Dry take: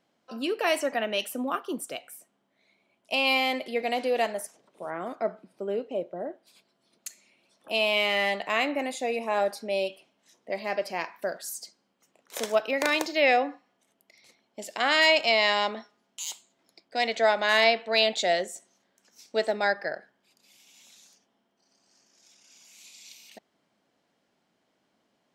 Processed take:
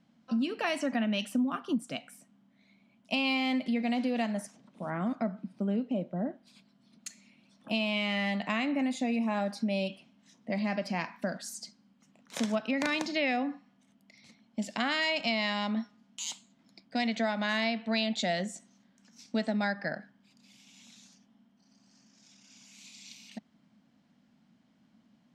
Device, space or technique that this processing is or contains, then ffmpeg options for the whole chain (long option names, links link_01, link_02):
jukebox: -af "lowpass=7100,lowshelf=frequency=300:width_type=q:width=3:gain=9,acompressor=threshold=-27dB:ratio=4"